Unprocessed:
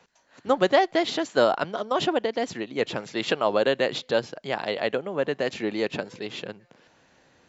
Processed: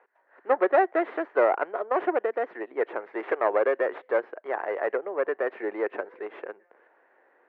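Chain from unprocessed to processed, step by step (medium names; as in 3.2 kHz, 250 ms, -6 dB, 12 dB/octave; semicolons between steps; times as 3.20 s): tracing distortion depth 0.47 ms; elliptic band-pass 370–1900 Hz, stop band 80 dB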